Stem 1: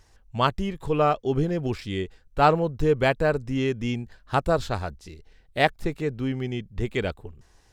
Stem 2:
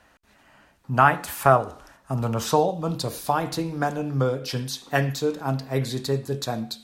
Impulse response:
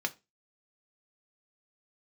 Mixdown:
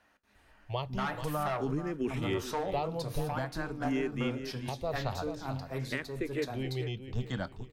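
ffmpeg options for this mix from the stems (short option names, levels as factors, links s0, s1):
-filter_complex "[0:a]acrossover=split=200[s0][s1];[s1]acompressor=threshold=0.0794:ratio=6[s2];[s0][s2]amix=inputs=2:normalize=0,asplit=2[s3][s4];[s4]afreqshift=0.5[s5];[s3][s5]amix=inputs=2:normalize=1,adelay=350,volume=0.531,asplit=3[s6][s7][s8];[s7]volume=0.355[s9];[s8]volume=0.376[s10];[1:a]asoftclip=type=tanh:threshold=0.158,volume=0.178,asplit=2[s11][s12];[s12]volume=0.631[s13];[2:a]atrim=start_sample=2205[s14];[s9][s13]amix=inputs=2:normalize=0[s15];[s15][s14]afir=irnorm=-1:irlink=0[s16];[s10]aecho=0:1:434|868|1302|1736:1|0.31|0.0961|0.0298[s17];[s6][s11][s16][s17]amix=inputs=4:normalize=0,alimiter=limit=0.0794:level=0:latency=1:release=421"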